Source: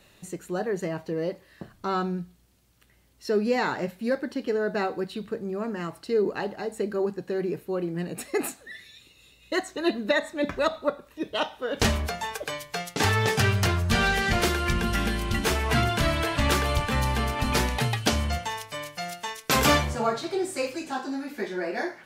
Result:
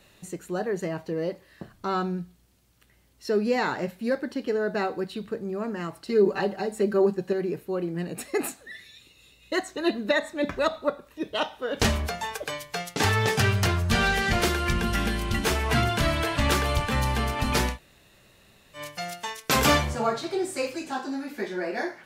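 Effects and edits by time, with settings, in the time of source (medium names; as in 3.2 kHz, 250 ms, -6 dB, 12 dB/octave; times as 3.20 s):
6.07–7.33 s: comb 5.2 ms, depth 92%
17.74–18.78 s: room tone, crossfade 0.10 s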